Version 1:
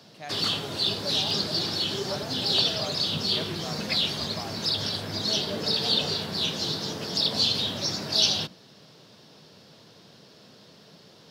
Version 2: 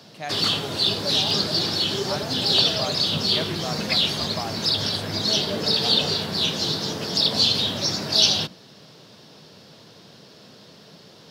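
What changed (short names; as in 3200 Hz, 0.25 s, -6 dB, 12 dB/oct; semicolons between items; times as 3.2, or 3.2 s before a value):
speech +7.5 dB; background +4.5 dB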